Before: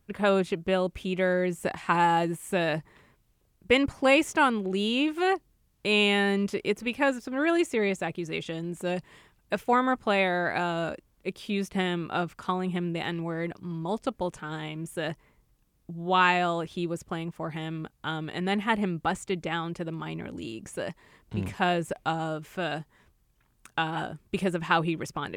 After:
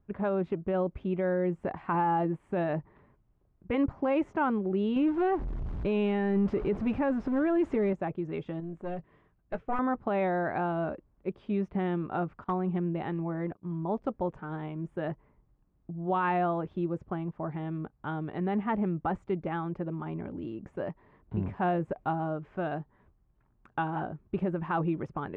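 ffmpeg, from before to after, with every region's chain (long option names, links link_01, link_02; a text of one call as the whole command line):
ffmpeg -i in.wav -filter_complex "[0:a]asettb=1/sr,asplit=3[link_01][link_02][link_03];[link_01]atrim=end=4.964[link_04];[link_02]atrim=start=4.96:end=7.93,asetpts=PTS-STARTPTS,afade=type=in:duration=0.004:curve=qsin,afade=type=out:start_time=2.966:duration=0.004:curve=qsin,aeval=exprs='val(0)+0.5*0.0237*sgn(val(0))':channel_layout=same,lowshelf=frequency=150:gain=7.5[link_05];[link_03]atrim=start=7.926[link_06];[link_04][link_05]acrossfade=duration=0.004:curve1=hsin:curve2=qsin[link_07];[link_07][link_06]acrossfade=duration=0.004:curve1=qsin:curve2=hsin,asettb=1/sr,asplit=3[link_08][link_09][link_10];[link_08]atrim=end=8.604[link_11];[link_09]atrim=start=8.6:end=9.79,asetpts=PTS-STARTPTS,afade=type=in:duration=0.004:curve=qsin,afade=type=out:start_time=1.186:duration=0.004:curve=qsin,bandreject=frequency=880:width=6.1,aeval=exprs='(tanh(12.6*val(0)+0.75)-tanh(0.75))/12.6':channel_layout=same,asplit=2[link_12][link_13];[link_13]adelay=18,volume=-13dB[link_14];[link_12][link_14]amix=inputs=2:normalize=0,atrim=end_sample=52479[link_15];[link_10]atrim=start=9.786[link_16];[link_11][link_15]acrossfade=duration=0.004:curve1=hsin:curve2=qsin[link_17];[link_17][link_16]acrossfade=duration=0.004:curve1=qsin:curve2=hsin,asettb=1/sr,asplit=3[link_18][link_19][link_20];[link_18]atrim=end=12.444[link_21];[link_19]atrim=start=12.44:end=13.75,asetpts=PTS-STARTPTS,afade=type=in:duration=0.004:curve=qsin,afade=type=out:start_time=1.306:duration=0.004:curve=qsin,agate=range=-33dB:threshold=-38dB:ratio=3:release=100:detection=peak,aeval=exprs='0.1*(abs(mod(val(0)/0.1+3,4)-2)-1)':channel_layout=same[link_22];[link_20]atrim=start=13.746[link_23];[link_21][link_22]acrossfade=duration=0.004:curve1=hsin:curve2=qsin[link_24];[link_24][link_23]acrossfade=duration=0.004:curve1=qsin:curve2=hsin,lowpass=1100,bandreject=frequency=490:width=12,alimiter=limit=-20dB:level=0:latency=1:release=25" out.wav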